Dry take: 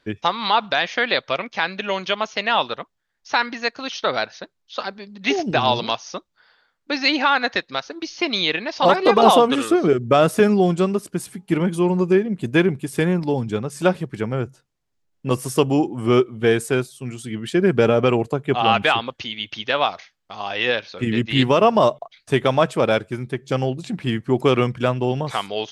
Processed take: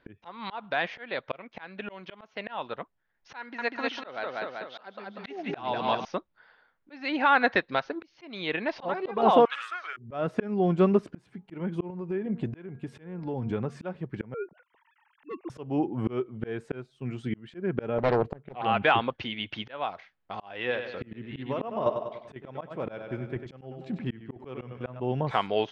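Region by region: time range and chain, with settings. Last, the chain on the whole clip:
0:03.39–0:06.05: high-pass filter 240 Hz 6 dB per octave + repeating echo 193 ms, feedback 41%, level −6.5 dB
0:09.45–0:09.97: high-pass filter 1,300 Hz 24 dB per octave + dynamic equaliser 3,300 Hz, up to −4 dB, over −37 dBFS, Q 1.1
0:11.90–0:13.76: hum removal 233.6 Hz, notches 7 + downward compressor 3 to 1, threshold −26 dBFS
0:14.34–0:15.50: three sine waves on the formant tracks + upward compression, threshold −40 dBFS + gain into a clipping stage and back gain 16 dB
0:17.98–0:18.65: high-frequency loss of the air 61 metres + highs frequency-modulated by the lows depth 0.86 ms
0:20.61–0:25.00: shaped tremolo saw down 4 Hz, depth 65% + repeating echo 97 ms, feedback 46%, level −10.5 dB
whole clip: low-pass filter 2,200 Hz 12 dB per octave; notch filter 1,200 Hz, Q 18; volume swells 552 ms

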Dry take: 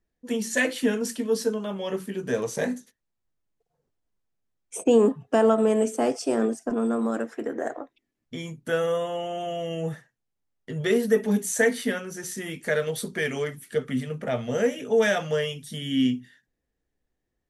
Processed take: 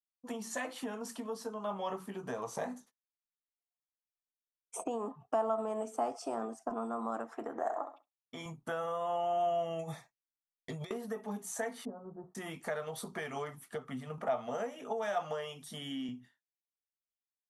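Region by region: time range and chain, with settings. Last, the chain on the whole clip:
0:07.63–0:08.46: high-pass filter 340 Hz 6 dB per octave + flutter between parallel walls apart 11.4 metres, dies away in 0.38 s
0:09.79–0:10.91: compressor whose output falls as the input rises −31 dBFS, ratio −0.5 + Butterworth band-reject 2,900 Hz, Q 3.9 + high shelf with overshoot 2,000 Hz +7.5 dB, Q 3
0:11.85–0:12.35: Gaussian smoothing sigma 11 samples + transient designer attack +3 dB, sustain −3 dB
0:14.18–0:16.09: high-pass filter 190 Hz + upward compression, threshold −37 dBFS
whole clip: downward compressor 4 to 1, threshold −31 dBFS; flat-topped bell 920 Hz +13.5 dB 1.2 octaves; downward expander −43 dBFS; level −7.5 dB

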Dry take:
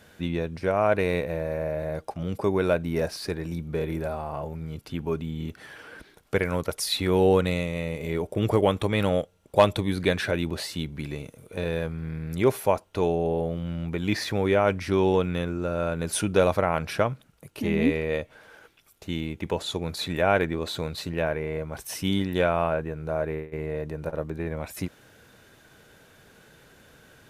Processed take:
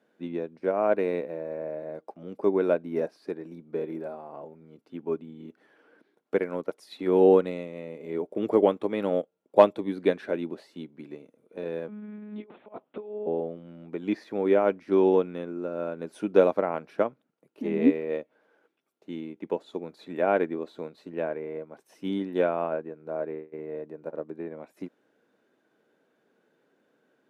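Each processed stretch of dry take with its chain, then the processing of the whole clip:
0:11.88–0:13.27: compressor whose output falls as the input rises −28 dBFS, ratio −0.5 + one-pitch LPC vocoder at 8 kHz 210 Hz
whole clip: high-pass filter 260 Hz 24 dB per octave; spectral tilt −4 dB per octave; expander for the loud parts 1.5 to 1, over −41 dBFS

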